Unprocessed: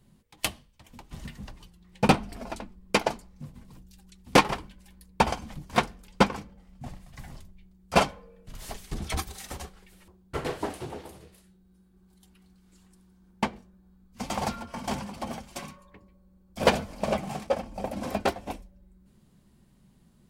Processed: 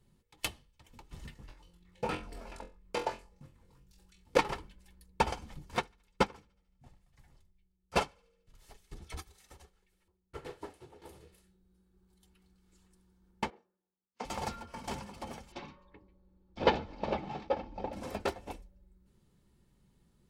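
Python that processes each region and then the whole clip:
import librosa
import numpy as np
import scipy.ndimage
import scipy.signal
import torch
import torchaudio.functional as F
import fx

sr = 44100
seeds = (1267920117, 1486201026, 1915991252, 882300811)

y = fx.chain(x, sr, fx.level_steps(step_db=14),
    fx.room_flutter(wall_m=3.9, rt60_s=0.28),
    fx.bell_lfo(hz=3.0, low_hz=460.0, high_hz=2700.0, db=8), at=(1.34, 4.39))
y = fx.chain(y, sr, fx.echo_thinned(ms=73, feedback_pct=62, hz=890.0, wet_db=-21),
    fx.upward_expand(threshold_db=-41.0, expansion=1.5), at=(5.76, 11.02))
y = fx.chain(y, sr, fx.bandpass_edges(low_hz=420.0, high_hz=6000.0),
    fx.high_shelf(hz=2100.0, db=-12.0),
    fx.band_widen(depth_pct=100), at=(13.5, 14.25))
y = fx.chain(y, sr, fx.lowpass(hz=4700.0, slope=24),
    fx.small_body(hz=(300.0, 840.0, 3700.0), ring_ms=25, db=7), at=(15.52, 17.93))
y = fx.high_shelf(y, sr, hz=12000.0, db=-4.0)
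y = fx.notch(y, sr, hz=790.0, q=17.0)
y = y + 0.37 * np.pad(y, (int(2.3 * sr / 1000.0), 0))[:len(y)]
y = y * librosa.db_to_amplitude(-7.0)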